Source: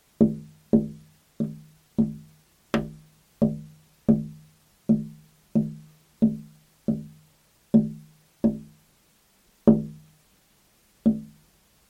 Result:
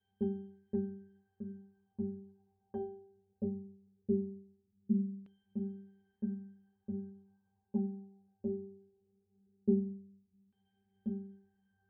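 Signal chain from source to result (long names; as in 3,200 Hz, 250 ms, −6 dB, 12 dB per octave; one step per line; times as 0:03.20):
asymmetric clip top −10 dBFS, bottom −6 dBFS
resonances in every octave G, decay 0.67 s
auto-filter low-pass saw down 0.19 Hz 230–3,000 Hz
level +3 dB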